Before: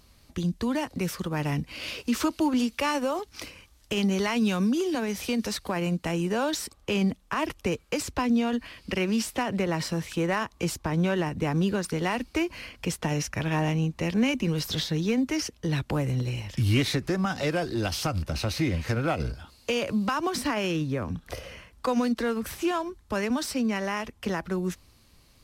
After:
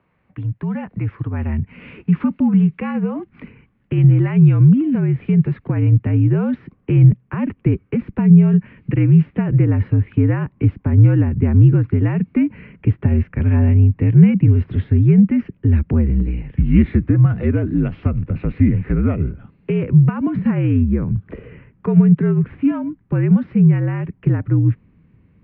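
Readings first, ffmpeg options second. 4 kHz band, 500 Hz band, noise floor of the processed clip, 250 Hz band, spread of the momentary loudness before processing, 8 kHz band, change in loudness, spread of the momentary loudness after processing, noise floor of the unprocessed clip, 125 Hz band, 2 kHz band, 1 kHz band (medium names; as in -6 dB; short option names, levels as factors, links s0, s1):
under -15 dB, +2.5 dB, -58 dBFS, +11.0 dB, 7 LU, under -40 dB, +11.5 dB, 11 LU, -59 dBFS, +17.5 dB, -2.5 dB, -4.5 dB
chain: -af "highpass=f=160:t=q:w=0.5412,highpass=f=160:t=q:w=1.307,lowpass=f=2400:t=q:w=0.5176,lowpass=f=2400:t=q:w=0.7071,lowpass=f=2400:t=q:w=1.932,afreqshift=-62,asubboost=boost=9.5:cutoff=240"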